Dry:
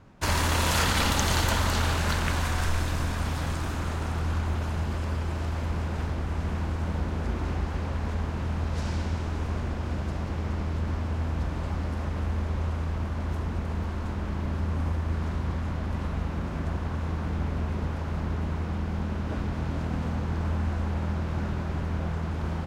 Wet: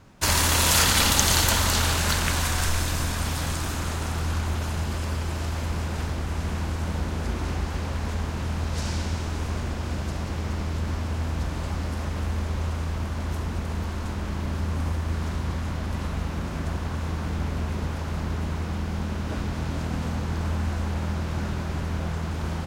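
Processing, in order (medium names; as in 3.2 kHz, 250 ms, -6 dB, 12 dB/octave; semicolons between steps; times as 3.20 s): treble shelf 3.7 kHz +11.5 dB; trim +1 dB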